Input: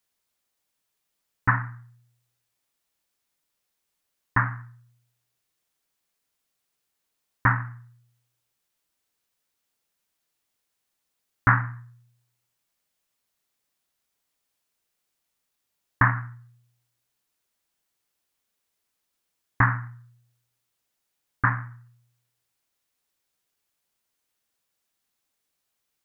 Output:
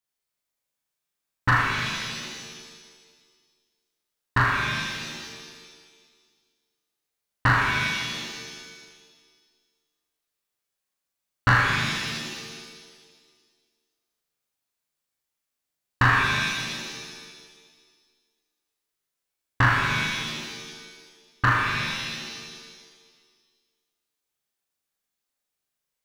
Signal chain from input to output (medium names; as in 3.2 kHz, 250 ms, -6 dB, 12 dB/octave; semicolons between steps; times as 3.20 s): waveshaping leveller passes 2; on a send: flutter echo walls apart 6.7 m, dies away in 0.71 s; on the sum: pitch-shifted reverb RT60 1.6 s, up +7 st, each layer -2 dB, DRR 4 dB; trim -5.5 dB